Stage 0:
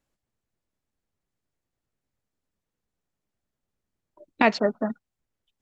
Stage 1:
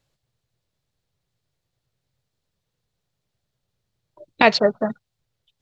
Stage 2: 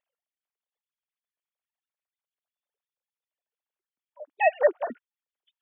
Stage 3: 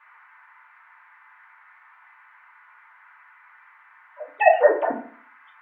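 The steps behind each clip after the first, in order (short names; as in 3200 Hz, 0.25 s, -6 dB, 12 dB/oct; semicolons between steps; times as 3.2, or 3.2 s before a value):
graphic EQ 125/250/500/4000 Hz +12/-7/+4/+9 dB; gain +3.5 dB
sine-wave speech; gain -5.5 dB
band noise 910–2100 Hz -60 dBFS; FDN reverb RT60 0.49 s, low-frequency decay 1.1×, high-frequency decay 0.5×, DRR -3 dB; gain +2.5 dB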